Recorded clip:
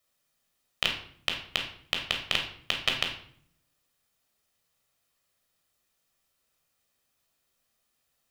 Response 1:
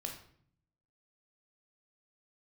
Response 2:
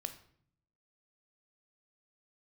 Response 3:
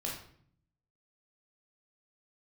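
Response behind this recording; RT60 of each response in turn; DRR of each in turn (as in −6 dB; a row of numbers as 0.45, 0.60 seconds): 1; 0.60, 0.60, 0.60 seconds; 1.5, 8.0, −3.5 decibels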